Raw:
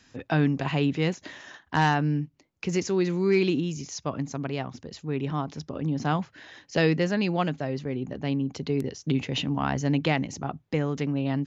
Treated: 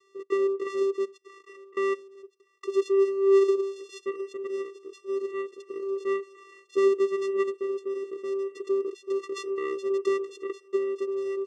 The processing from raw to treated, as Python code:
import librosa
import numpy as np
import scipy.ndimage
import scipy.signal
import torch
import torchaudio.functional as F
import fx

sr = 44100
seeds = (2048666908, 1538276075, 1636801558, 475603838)

p1 = fx.level_steps(x, sr, step_db=23, at=(1.01, 2.22), fade=0.02)
p2 = fx.vocoder(p1, sr, bands=4, carrier='square', carrier_hz=391.0)
y = p2 + fx.echo_thinned(p2, sr, ms=1171, feedback_pct=53, hz=940.0, wet_db=-15.5, dry=0)